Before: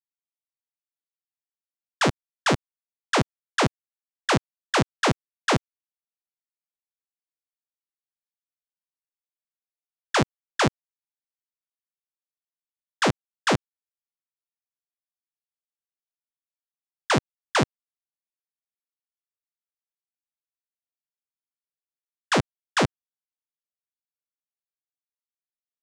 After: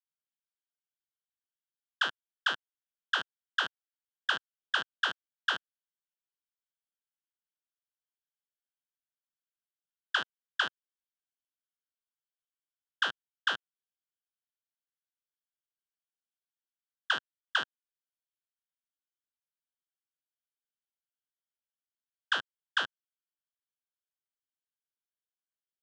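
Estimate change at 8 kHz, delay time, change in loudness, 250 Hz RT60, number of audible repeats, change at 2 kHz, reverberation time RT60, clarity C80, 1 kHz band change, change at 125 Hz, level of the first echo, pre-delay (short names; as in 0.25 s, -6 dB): -18.5 dB, none, -7.5 dB, none, none, -2.5 dB, none, none, -10.5 dB, under -30 dB, none, none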